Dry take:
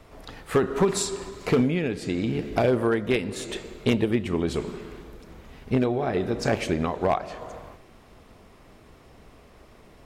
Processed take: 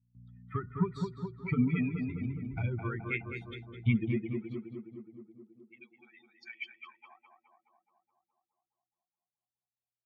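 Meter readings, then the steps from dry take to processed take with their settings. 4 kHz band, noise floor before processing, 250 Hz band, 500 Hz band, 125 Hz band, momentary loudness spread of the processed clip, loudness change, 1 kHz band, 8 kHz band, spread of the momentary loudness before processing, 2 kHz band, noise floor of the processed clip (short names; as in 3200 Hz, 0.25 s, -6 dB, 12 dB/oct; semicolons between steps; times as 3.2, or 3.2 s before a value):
-18.5 dB, -52 dBFS, -8.5 dB, -18.5 dB, -4.0 dB, 20 LU, -9.0 dB, -15.5 dB, under -35 dB, 17 LU, -7.5 dB, under -85 dBFS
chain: per-bin expansion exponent 3; in parallel at -0.5 dB: limiter -25.5 dBFS, peak gain reduction 10 dB; on the sum: buzz 60 Hz, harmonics 4, -52 dBFS -3 dB/oct; high shelf 3800 Hz -9.5 dB; low-pass sweep 2300 Hz -> 100 Hz, 6.49–8.25; de-hum 146.1 Hz, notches 4; gate with hold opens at -45 dBFS; high-pass sweep 99 Hz -> 2900 Hz, 3.84–4.82; harmonic-percussive split percussive -4 dB; bell 570 Hz -10 dB 2 oct; comb 0.9 ms, depth 79%; on a send: tape echo 0.21 s, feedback 76%, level -3 dB, low-pass 1400 Hz; on the sum: gain -5.5 dB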